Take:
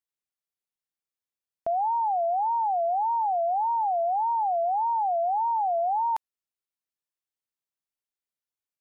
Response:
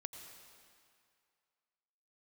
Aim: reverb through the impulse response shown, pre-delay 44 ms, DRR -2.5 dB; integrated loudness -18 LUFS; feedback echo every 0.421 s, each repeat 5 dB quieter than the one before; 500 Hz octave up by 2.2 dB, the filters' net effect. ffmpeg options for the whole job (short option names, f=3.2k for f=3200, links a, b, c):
-filter_complex "[0:a]equalizer=f=500:t=o:g=4,aecho=1:1:421|842|1263|1684|2105|2526|2947:0.562|0.315|0.176|0.0988|0.0553|0.031|0.0173,asplit=2[a][b];[1:a]atrim=start_sample=2205,adelay=44[c];[b][c]afir=irnorm=-1:irlink=0,volume=5.5dB[d];[a][d]amix=inputs=2:normalize=0,volume=1dB"